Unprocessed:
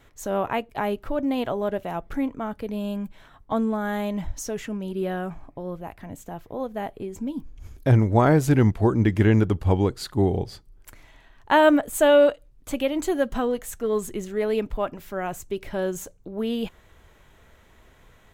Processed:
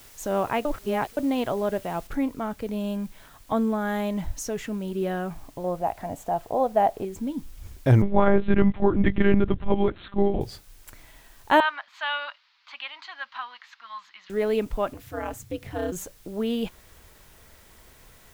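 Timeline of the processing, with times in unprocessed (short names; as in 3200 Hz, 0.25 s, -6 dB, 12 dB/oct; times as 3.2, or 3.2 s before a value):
0.65–1.17 reverse
2.07 noise floor step -51 dB -57 dB
5.64–7.05 bell 720 Hz +14.5 dB 0.86 oct
8.02–10.41 monotone LPC vocoder at 8 kHz 200 Hz
11.6–14.3 elliptic band-pass 970–4500 Hz
14.93–15.92 ring modulator 110 Hz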